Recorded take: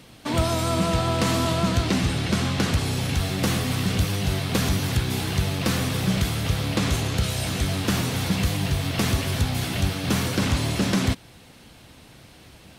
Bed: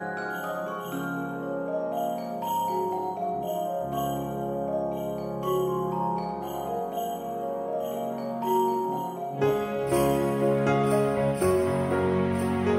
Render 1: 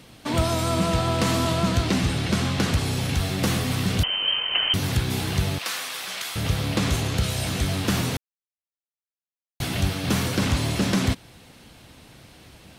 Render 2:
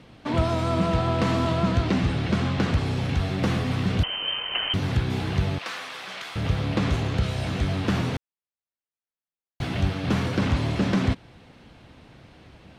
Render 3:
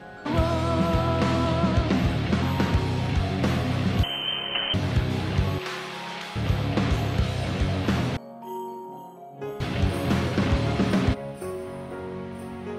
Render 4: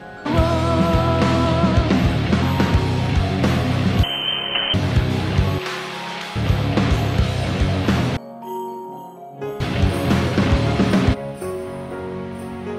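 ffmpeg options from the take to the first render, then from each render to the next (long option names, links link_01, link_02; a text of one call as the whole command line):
ffmpeg -i in.wav -filter_complex "[0:a]asettb=1/sr,asplit=3[link_01][link_02][link_03];[link_01]atrim=end=4.034[link_04];[link_02]atrim=start=4.03:end=4.74,asetpts=PTS-STARTPTS,afade=type=in:duration=0.004:curve=qsin,afade=type=out:start_time=0.706:duration=0.004:curve=qsin,lowpass=frequency=2700:width_type=q:width=0.5098,lowpass=frequency=2700:width_type=q:width=0.6013,lowpass=frequency=2700:width_type=q:width=0.9,lowpass=frequency=2700:width_type=q:width=2.563,afreqshift=-3200[link_05];[link_03]atrim=start=4.736[link_06];[link_04][link_05]acrossfade=duration=0.004:curve1=hsin:curve2=qsin[link_07];[link_07][link_06]acrossfade=duration=0.004:curve1=qsin:curve2=hsin,asettb=1/sr,asplit=3[link_08][link_09][link_10];[link_08]atrim=end=5.584[link_11];[link_09]atrim=start=5.58:end=6.36,asetpts=PTS-STARTPTS,afade=type=in:duration=0.004:curve=qsin,afade=type=out:start_time=0.776:duration=0.004:curve=qsin,highpass=1000[link_12];[link_10]atrim=start=6.356[link_13];[link_11][link_12]acrossfade=duration=0.004:curve1=hsin:curve2=qsin[link_14];[link_14][link_13]acrossfade=duration=0.004:curve1=qsin:curve2=hsin,asplit=3[link_15][link_16][link_17];[link_15]atrim=end=8.17,asetpts=PTS-STARTPTS,afade=type=out:start_time=8.166:duration=0.004:curve=hsin[link_18];[link_16]atrim=start=8.17:end=9.6,asetpts=PTS-STARTPTS,volume=0[link_19];[link_17]atrim=start=9.6,asetpts=PTS-STARTPTS,afade=type=in:duration=0.004:curve=hsin[link_20];[link_18][link_19][link_20]concat=n=3:v=0:a=1" out.wav
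ffmpeg -i in.wav -af "lowpass=frequency=4000:poles=1,aemphasis=mode=reproduction:type=50kf" out.wav
ffmpeg -i in.wav -i bed.wav -filter_complex "[1:a]volume=-10dB[link_01];[0:a][link_01]amix=inputs=2:normalize=0" out.wav
ffmpeg -i in.wav -af "volume=6dB" out.wav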